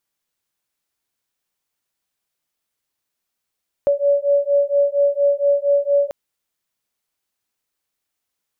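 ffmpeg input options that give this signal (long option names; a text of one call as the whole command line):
ffmpeg -f lavfi -i "aevalsrc='0.141*(sin(2*PI*566*t)+sin(2*PI*570.3*t))':duration=2.24:sample_rate=44100" out.wav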